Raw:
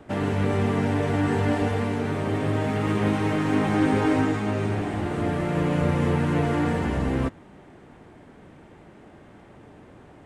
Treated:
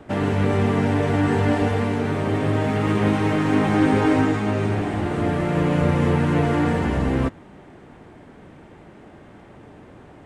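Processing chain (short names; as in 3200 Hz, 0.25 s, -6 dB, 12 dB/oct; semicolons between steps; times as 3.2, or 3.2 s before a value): high shelf 8600 Hz -4 dB; gain +3.5 dB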